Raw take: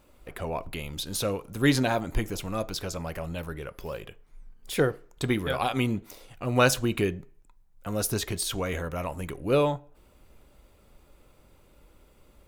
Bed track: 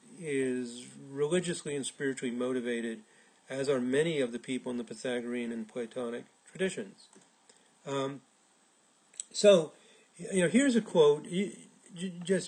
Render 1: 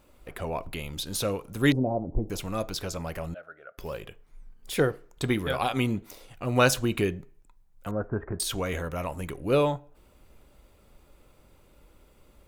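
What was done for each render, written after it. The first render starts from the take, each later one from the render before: 1.72–2.30 s: inverse Chebyshev low-pass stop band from 1.5 kHz; 3.34–3.78 s: two resonant band-passes 960 Hz, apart 1.1 oct; 7.91–8.40 s: elliptic low-pass 1.6 kHz, stop band 60 dB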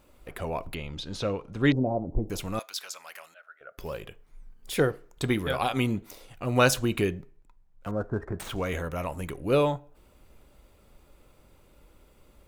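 0.75–1.77 s: distance through air 130 m; 2.59–3.61 s: high-pass 1.4 kHz; 7.17–8.65 s: median filter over 9 samples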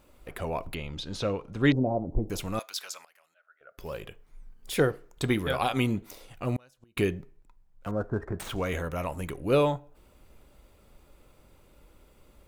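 3.05–4.00 s: fade in quadratic, from -19 dB; 6.55–6.97 s: inverted gate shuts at -19 dBFS, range -38 dB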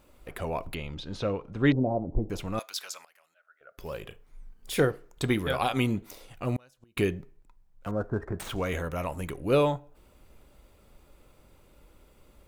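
0.94–2.58 s: treble shelf 4.9 kHz -11 dB; 4.02–4.85 s: doubling 35 ms -12 dB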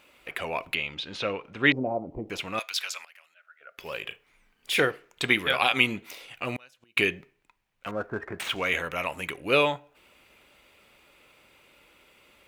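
high-pass 320 Hz 6 dB/octave; peaking EQ 2.5 kHz +13.5 dB 1.4 oct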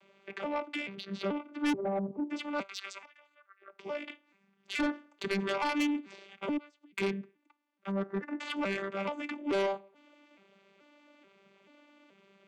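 vocoder on a broken chord bare fifth, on G3, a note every 432 ms; saturation -26 dBFS, distortion -7 dB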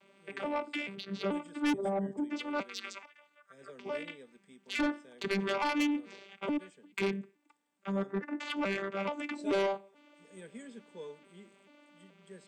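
add bed track -22.5 dB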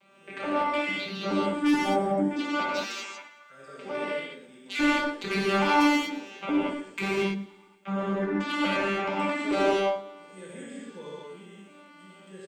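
feedback delay 114 ms, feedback 57%, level -19.5 dB; gated-style reverb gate 260 ms flat, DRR -7 dB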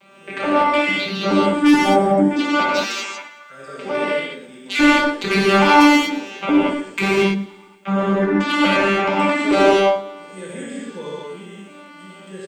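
trim +10.5 dB; peak limiter -1 dBFS, peak gain reduction 1 dB

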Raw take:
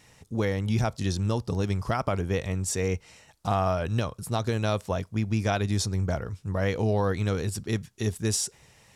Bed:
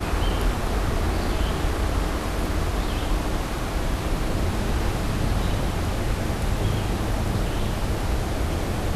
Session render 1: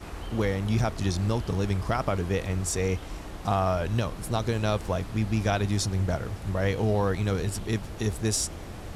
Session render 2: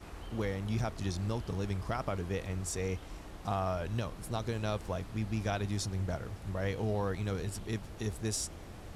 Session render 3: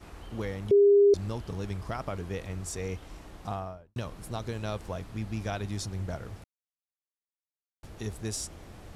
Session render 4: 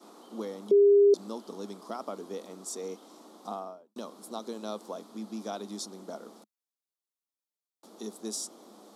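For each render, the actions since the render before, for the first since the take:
add bed -14 dB
trim -8 dB
0.71–1.14 s: bleep 404 Hz -15.5 dBFS; 3.41–3.96 s: studio fade out; 6.44–7.83 s: mute
Chebyshev high-pass 210 Hz, order 5; high-order bell 2.1 kHz -13 dB 1.1 oct

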